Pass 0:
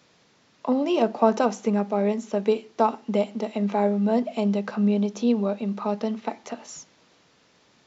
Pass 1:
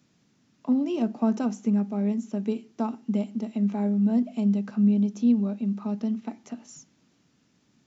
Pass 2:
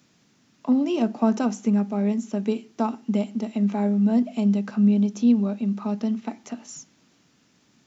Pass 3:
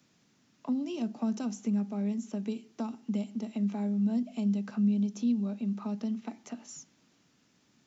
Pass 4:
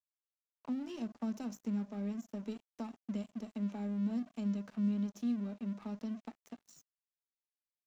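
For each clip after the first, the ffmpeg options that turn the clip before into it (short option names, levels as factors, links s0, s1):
-af "equalizer=f=125:t=o:w=1:g=3,equalizer=f=250:t=o:w=1:g=7,equalizer=f=500:t=o:w=1:g=-10,equalizer=f=1000:t=o:w=1:g=-7,equalizer=f=2000:t=o:w=1:g=-5,equalizer=f=4000:t=o:w=1:g=-7,volume=0.668"
-af "lowshelf=f=380:g=-6,volume=2.24"
-filter_complex "[0:a]acrossover=split=240|3000[s0][s1][s2];[s1]acompressor=threshold=0.0224:ratio=6[s3];[s0][s3][s2]amix=inputs=3:normalize=0,volume=0.501"
-af "aeval=exprs='sgn(val(0))*max(abs(val(0))-0.00501,0)':c=same,volume=0.531"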